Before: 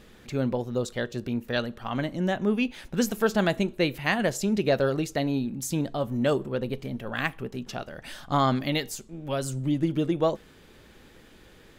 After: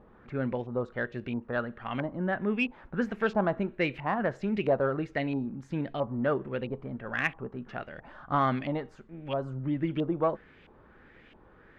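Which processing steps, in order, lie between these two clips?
LFO low-pass saw up 1.5 Hz 880–2700 Hz; Chebyshev shaper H 5 -28 dB, 6 -42 dB, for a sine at -5.5 dBFS; trim -6 dB

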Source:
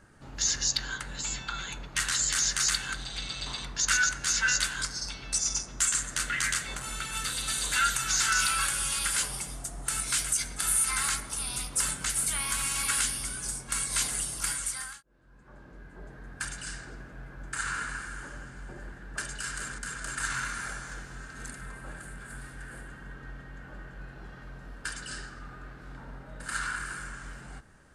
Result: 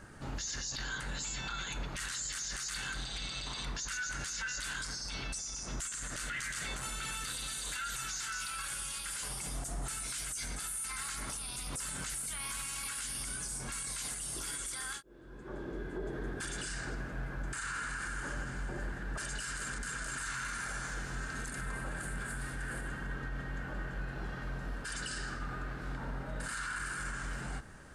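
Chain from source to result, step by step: 14.36–16.67 s: small resonant body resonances 370/3400 Hz, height 13 dB, ringing for 25 ms; peak limiter -35.5 dBFS, peak gain reduction 20.5 dB; trim +5.5 dB

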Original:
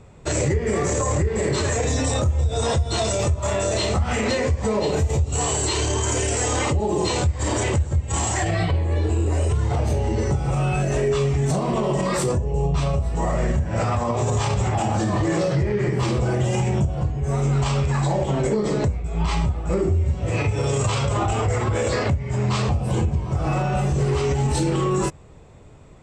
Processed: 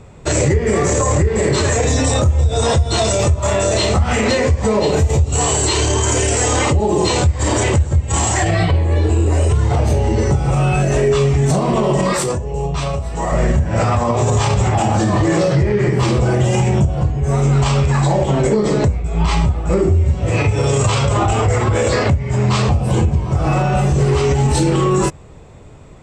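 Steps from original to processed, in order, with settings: 12.13–13.32 s: bass shelf 460 Hz -7 dB; trim +6.5 dB

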